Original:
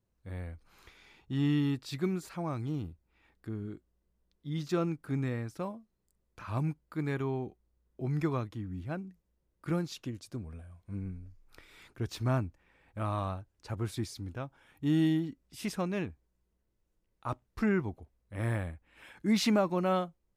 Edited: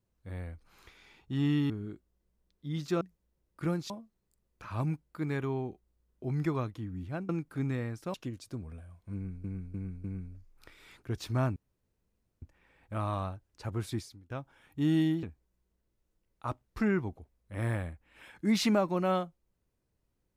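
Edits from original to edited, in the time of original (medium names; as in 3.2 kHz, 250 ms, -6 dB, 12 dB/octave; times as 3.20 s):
1.70–3.51 s: delete
4.82–5.67 s: swap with 9.06–9.95 s
10.95–11.25 s: loop, 4 plays
12.47 s: insert room tone 0.86 s
14.03–14.35 s: fade out quadratic, to -20 dB
15.28–16.04 s: delete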